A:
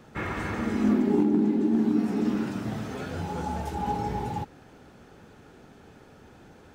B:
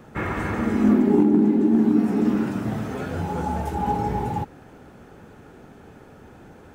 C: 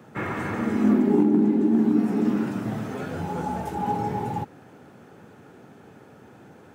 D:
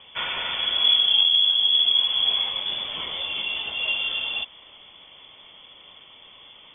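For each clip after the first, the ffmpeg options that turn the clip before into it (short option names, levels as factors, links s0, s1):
-af "equalizer=f=4500:t=o:w=1.6:g=-7,volume=1.88"
-af "highpass=f=100:w=0.5412,highpass=f=100:w=1.3066,volume=0.794"
-af "aexciter=amount=13.6:drive=3.1:freq=2800,lowpass=f=3100:t=q:w=0.5098,lowpass=f=3100:t=q:w=0.6013,lowpass=f=3100:t=q:w=0.9,lowpass=f=3100:t=q:w=2.563,afreqshift=-3600"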